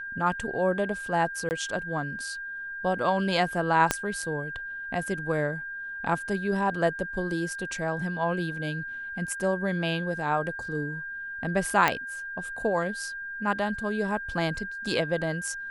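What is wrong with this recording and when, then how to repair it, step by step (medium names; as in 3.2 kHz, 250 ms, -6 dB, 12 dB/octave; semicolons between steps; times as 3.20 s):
whine 1.6 kHz -34 dBFS
1.49–1.51 s: dropout 19 ms
3.91 s: pop -7 dBFS
11.88 s: pop -8 dBFS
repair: de-click; band-stop 1.6 kHz, Q 30; interpolate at 1.49 s, 19 ms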